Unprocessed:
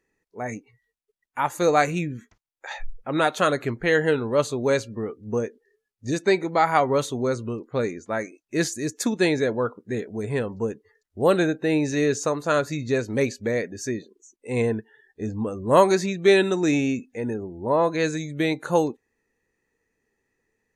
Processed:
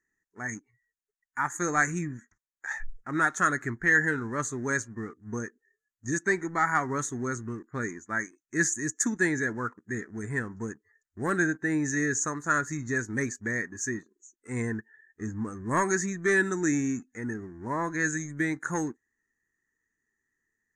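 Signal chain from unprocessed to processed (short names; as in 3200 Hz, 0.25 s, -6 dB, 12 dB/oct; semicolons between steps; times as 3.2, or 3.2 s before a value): sample leveller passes 1; EQ curve 340 Hz 0 dB, 530 Hz -14 dB, 1800 Hz +11 dB, 2700 Hz -16 dB, 4500 Hz -11 dB, 6700 Hz +11 dB, 13000 Hz -9 dB; gain -8.5 dB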